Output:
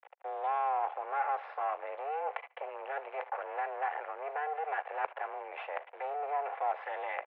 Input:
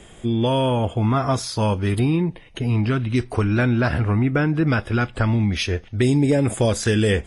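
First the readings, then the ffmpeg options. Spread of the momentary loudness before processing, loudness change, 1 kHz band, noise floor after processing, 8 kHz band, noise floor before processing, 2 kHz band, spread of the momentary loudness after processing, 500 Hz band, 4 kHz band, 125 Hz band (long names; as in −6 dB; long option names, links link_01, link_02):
4 LU, −15.5 dB, −3.0 dB, −57 dBFS, below −40 dB, −45 dBFS, −13.5 dB, 8 LU, −15.0 dB, below −25 dB, below −40 dB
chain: -af "agate=range=-33dB:threshold=-38dB:ratio=3:detection=peak,aecho=1:1:3.2:0.87,aeval=exprs='0.596*(cos(1*acos(clip(val(0)/0.596,-1,1)))-cos(1*PI/2))+0.0596*(cos(2*acos(clip(val(0)/0.596,-1,1)))-cos(2*PI/2))+0.0596*(cos(5*acos(clip(val(0)/0.596,-1,1)))-cos(5*PI/2))':channel_layout=same,dynaudnorm=framelen=140:gausssize=5:maxgain=11.5dB,alimiter=limit=-9.5dB:level=0:latency=1:release=133,areverse,acompressor=threshold=-23dB:ratio=10,areverse,acrusher=bits=4:dc=4:mix=0:aa=0.000001,highpass=frequency=390:width_type=q:width=0.5412,highpass=frequency=390:width_type=q:width=1.307,lowpass=frequency=2300:width_type=q:width=0.5176,lowpass=frequency=2300:width_type=q:width=0.7071,lowpass=frequency=2300:width_type=q:width=1.932,afreqshift=150,equalizer=frequency=790:width_type=o:width=0.76:gain=8.5,aecho=1:1:73|146:0.0668|0.0227,volume=-6dB"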